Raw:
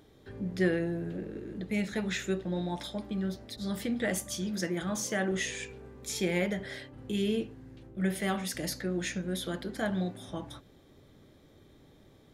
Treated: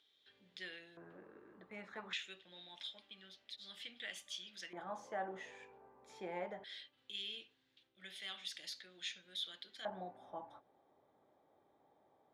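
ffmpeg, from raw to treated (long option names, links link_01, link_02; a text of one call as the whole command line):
ffmpeg -i in.wav -af "asetnsamples=nb_out_samples=441:pad=0,asendcmd='0.97 bandpass f 1100;2.13 bandpass f 3100;4.73 bandpass f 860;6.64 bandpass f 3500;9.85 bandpass f 810',bandpass=frequency=3400:width_type=q:width=3.4:csg=0" out.wav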